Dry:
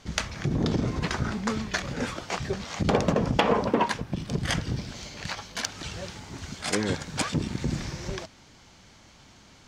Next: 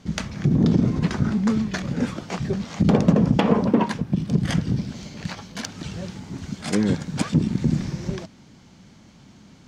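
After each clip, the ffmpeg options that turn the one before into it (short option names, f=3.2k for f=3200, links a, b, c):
-af "equalizer=f=190:t=o:w=1.8:g=13.5,volume=-2.5dB"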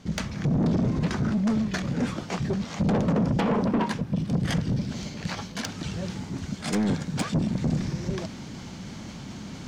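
-af "areverse,acompressor=mode=upward:threshold=-27dB:ratio=2.5,areverse,asoftclip=type=tanh:threshold=-19dB"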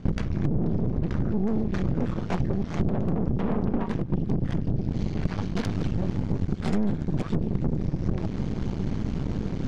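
-af "aemphasis=mode=reproduction:type=riaa,acompressor=threshold=-24dB:ratio=10,aeval=exprs='0.119*(cos(1*acos(clip(val(0)/0.119,-1,1)))-cos(1*PI/2))+0.0531*(cos(2*acos(clip(val(0)/0.119,-1,1)))-cos(2*PI/2))+0.0133*(cos(6*acos(clip(val(0)/0.119,-1,1)))-cos(6*PI/2))':c=same"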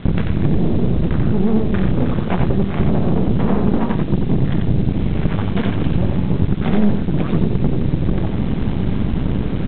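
-af "aresample=8000,acrusher=bits=7:mix=0:aa=0.000001,aresample=44100,aecho=1:1:90:0.596,volume=8dB"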